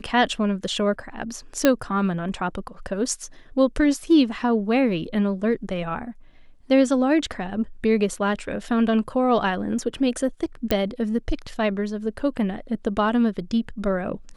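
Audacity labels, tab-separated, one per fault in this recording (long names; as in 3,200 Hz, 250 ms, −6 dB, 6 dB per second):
1.650000	1.650000	click −3 dBFS
10.710000	10.710000	click −7 dBFS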